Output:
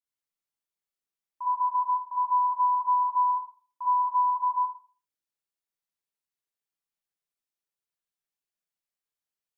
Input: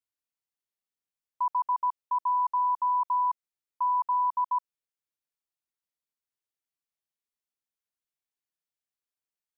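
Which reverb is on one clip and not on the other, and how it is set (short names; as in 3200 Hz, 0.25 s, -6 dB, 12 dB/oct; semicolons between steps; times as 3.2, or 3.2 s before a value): Schroeder reverb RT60 0.42 s, DRR -6.5 dB; gain -8 dB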